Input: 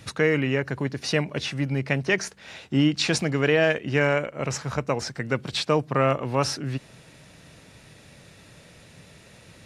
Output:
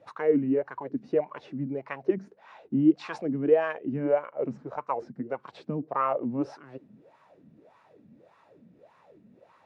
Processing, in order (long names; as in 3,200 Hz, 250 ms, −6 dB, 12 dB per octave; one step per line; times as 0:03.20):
LFO wah 1.7 Hz 210–1,100 Hz, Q 6.8
level +7.5 dB